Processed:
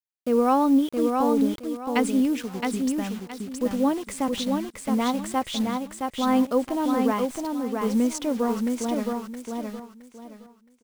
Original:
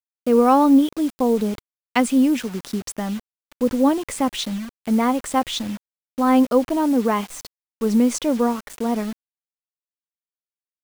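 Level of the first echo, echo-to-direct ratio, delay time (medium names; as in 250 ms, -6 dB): -4.0 dB, -3.5 dB, 668 ms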